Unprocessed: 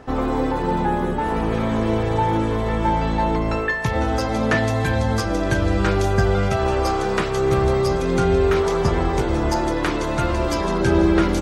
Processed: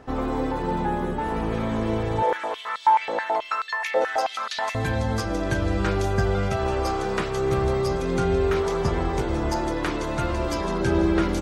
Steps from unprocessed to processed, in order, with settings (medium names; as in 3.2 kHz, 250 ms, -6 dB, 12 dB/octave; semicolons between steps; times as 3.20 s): 2.22–4.75 s: step-sequenced high-pass 9.3 Hz 530–4000 Hz; trim -4.5 dB